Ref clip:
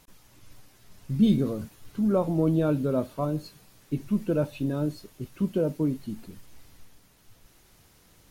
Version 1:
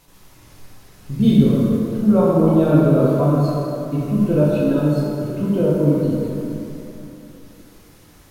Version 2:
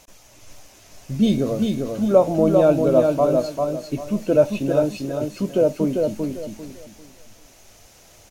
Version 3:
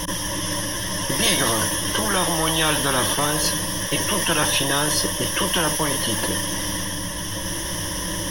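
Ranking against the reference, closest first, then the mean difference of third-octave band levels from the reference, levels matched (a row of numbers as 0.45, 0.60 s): 2, 1, 3; 5.5, 7.0, 19.5 dB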